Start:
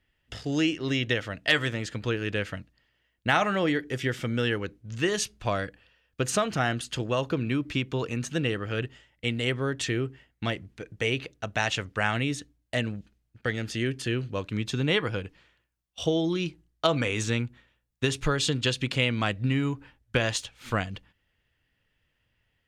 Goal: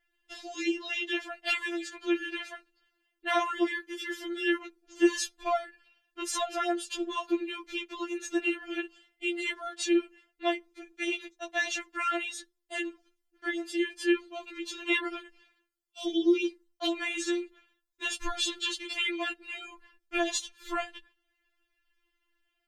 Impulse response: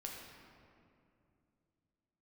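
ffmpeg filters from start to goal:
-af "afftfilt=real='re*4*eq(mod(b,16),0)':imag='im*4*eq(mod(b,16),0)':win_size=2048:overlap=0.75"

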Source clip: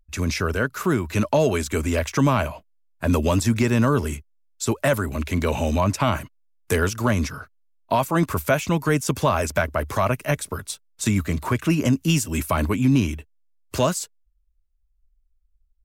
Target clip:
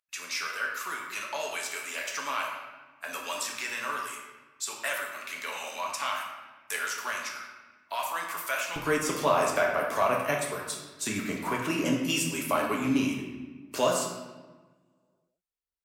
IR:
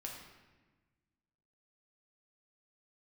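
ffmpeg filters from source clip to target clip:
-filter_complex "[0:a]asetnsamples=nb_out_samples=441:pad=0,asendcmd='8.76 highpass f 330',highpass=1300[link_01];[1:a]atrim=start_sample=2205[link_02];[link_01][link_02]afir=irnorm=-1:irlink=0"

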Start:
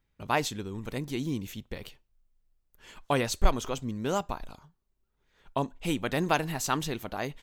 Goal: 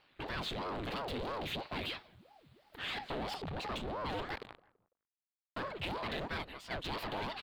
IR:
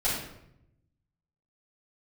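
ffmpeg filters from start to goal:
-filter_complex "[0:a]asettb=1/sr,asplit=3[link_01][link_02][link_03];[link_01]atrim=end=3.114[link_04];[link_02]atrim=start=3.11:end=3.76,asetpts=PTS-STARTPTS,afade=type=in:duration=0.004:curve=qsin,afade=type=out:start_time=0.646:duration=0.004:curve=qsin,tiltshelf=frequency=770:gain=5.5[link_05];[link_03]atrim=start=3.756[link_06];[link_04][link_05]acrossfade=duration=0.004:curve1=hsin:curve2=qsin[link_07];[link_07][link_06]acrossfade=duration=0.004:curve1=qsin:curve2=hsin,asettb=1/sr,asplit=3[link_08][link_09][link_10];[link_08]atrim=end=4.354[link_11];[link_09]atrim=start=4.35:end=5.6,asetpts=PTS-STARTPTS,afade=type=in:duration=0.004:curve=qsin,afade=type=out:start_time=1.246:duration=0.004:curve=qsin,acrusher=bits=4:mix=0:aa=0.5[link_12];[link_10]atrim=start=5.596[link_13];[link_11][link_12]acrossfade=duration=0.004:curve1=hsin:curve2=qsin[link_14];[link_14][link_13]acrossfade=duration=0.004:curve1=qsin:curve2=hsin,asplit=3[link_15][link_16][link_17];[link_15]afade=type=out:start_time=6.15:duration=0.02[link_18];[link_16]agate=range=-31dB:threshold=-25dB:ratio=16:detection=peak,afade=type=in:start_time=6.15:duration=0.02,afade=type=out:start_time=6.84:duration=0.02[link_19];[link_17]afade=type=in:start_time=6.84:duration=0.02[link_20];[link_18][link_19][link_20]amix=inputs=3:normalize=0,acompressor=threshold=-30dB:ratio=6,alimiter=level_in=4dB:limit=-24dB:level=0:latency=1:release=15,volume=-4dB,dynaudnorm=framelen=130:gausssize=7:maxgain=8.5dB,asoftclip=type=hard:threshold=-36.5dB,asplit=2[link_21][link_22];[link_22]highpass=frequency=720:poles=1,volume=20dB,asoftclip=type=tanh:threshold=-36.5dB[link_23];[link_21][link_23]amix=inputs=2:normalize=0,lowpass=frequency=3700:poles=1,volume=-6dB,highshelf=frequency=4700:width_type=q:width=3:gain=-6.5,asplit=2[link_24][link_25];[link_25]adelay=167,lowpass=frequency=1200:poles=1,volume=-19dB,asplit=2[link_26][link_27];[link_27]adelay=167,lowpass=frequency=1200:poles=1,volume=0.39,asplit=2[link_28][link_29];[link_29]adelay=167,lowpass=frequency=1200:poles=1,volume=0.39[link_30];[link_26][link_28][link_30]amix=inputs=3:normalize=0[link_31];[link_24][link_31]amix=inputs=2:normalize=0,aeval=exprs='val(0)*sin(2*PI*470*n/s+470*0.8/3*sin(2*PI*3*n/s))':channel_layout=same,volume=4dB"

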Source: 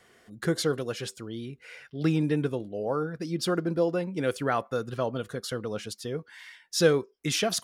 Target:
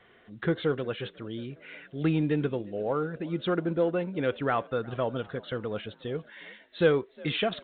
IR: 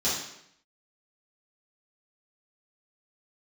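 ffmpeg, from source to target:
-filter_complex "[0:a]asubboost=boost=2:cutoff=75,asplit=2[link_01][link_02];[link_02]asoftclip=type=tanh:threshold=-20dB,volume=-6dB[link_03];[link_01][link_03]amix=inputs=2:normalize=0,asplit=5[link_04][link_05][link_06][link_07][link_08];[link_05]adelay=360,afreqshift=50,volume=-23.5dB[link_09];[link_06]adelay=720,afreqshift=100,volume=-28.7dB[link_10];[link_07]adelay=1080,afreqshift=150,volume=-33.9dB[link_11];[link_08]adelay=1440,afreqshift=200,volume=-39.1dB[link_12];[link_04][link_09][link_10][link_11][link_12]amix=inputs=5:normalize=0,volume=-3dB" -ar 8000 -c:a pcm_alaw

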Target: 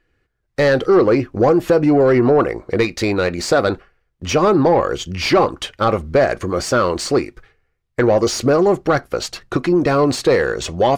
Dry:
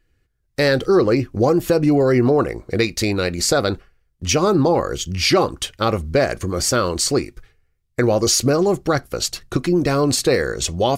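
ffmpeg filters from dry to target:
ffmpeg -i in.wav -filter_complex "[0:a]asplit=2[link_01][link_02];[link_02]highpass=frequency=720:poles=1,volume=13dB,asoftclip=type=tanh:threshold=-5dB[link_03];[link_01][link_03]amix=inputs=2:normalize=0,lowpass=frequency=1200:poles=1,volume=-6dB,volume=2dB" out.wav

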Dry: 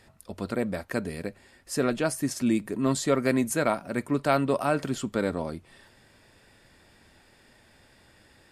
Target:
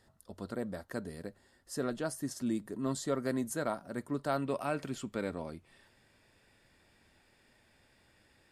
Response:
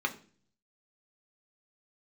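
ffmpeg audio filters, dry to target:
-af "asetnsamples=nb_out_samples=441:pad=0,asendcmd='4.42 equalizer g 3',equalizer=frequency=2400:width=4.2:gain=-12,volume=-9dB"

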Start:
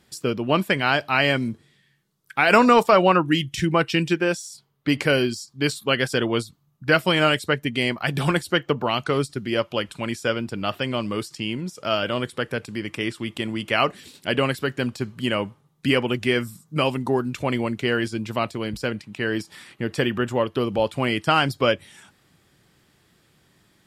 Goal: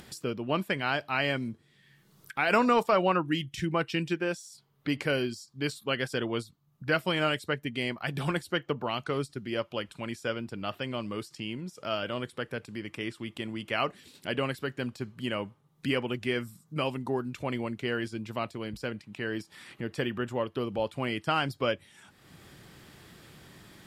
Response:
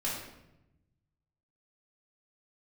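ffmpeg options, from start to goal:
-af "equalizer=frequency=7800:width=0.63:gain=-2.5,acompressor=mode=upward:threshold=-28dB:ratio=2.5,volume=-8.5dB"

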